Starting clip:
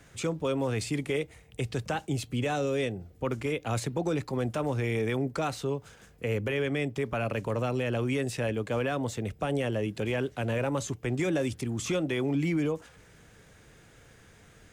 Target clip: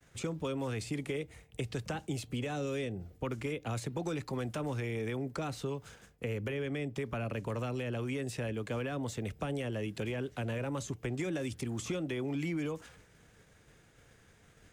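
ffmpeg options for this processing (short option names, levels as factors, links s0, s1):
-filter_complex "[0:a]agate=range=0.0224:threshold=0.00355:ratio=3:detection=peak,acrossover=split=410|990[s0][s1][s2];[s0]acompressor=threshold=0.0178:ratio=4[s3];[s1]acompressor=threshold=0.00562:ratio=4[s4];[s2]acompressor=threshold=0.00708:ratio=4[s5];[s3][s4][s5]amix=inputs=3:normalize=0"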